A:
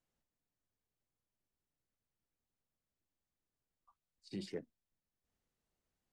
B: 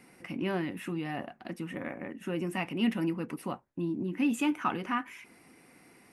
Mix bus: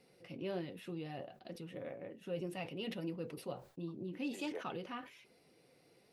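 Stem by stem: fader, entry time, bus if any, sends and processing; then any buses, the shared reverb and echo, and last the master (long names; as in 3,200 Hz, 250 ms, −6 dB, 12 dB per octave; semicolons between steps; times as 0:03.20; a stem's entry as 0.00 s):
−4.0 dB, 0.00 s, no send, high-pass filter 570 Hz 12 dB per octave; parametric band 760 Hz +12 dB 2.3 octaves
−7.0 dB, 0.00 s, no send, octave-band graphic EQ 125/250/500/1,000/2,000/4,000/8,000 Hz +6/−7/+12/−6/−6/+12/−5 dB; flanger 1.3 Hz, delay 3.9 ms, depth 4.1 ms, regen −53%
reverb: not used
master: level that may fall only so fast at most 140 dB per second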